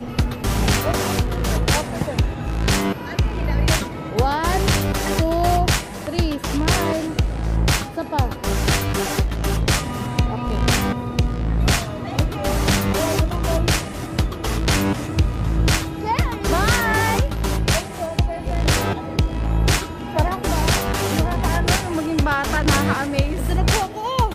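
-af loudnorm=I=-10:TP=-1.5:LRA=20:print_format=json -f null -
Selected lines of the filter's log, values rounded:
"input_i" : "-20.8",
"input_tp" : "-6.4",
"input_lra" : "1.3",
"input_thresh" : "-30.8",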